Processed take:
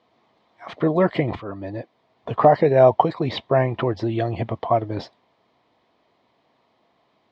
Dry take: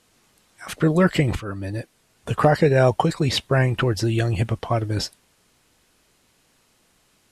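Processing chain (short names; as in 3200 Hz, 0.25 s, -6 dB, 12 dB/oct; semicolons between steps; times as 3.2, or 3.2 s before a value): speaker cabinet 140–3500 Hz, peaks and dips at 170 Hz -5 dB, 680 Hz +8 dB, 1000 Hz +6 dB, 1500 Hz -10 dB, 2700 Hz -9 dB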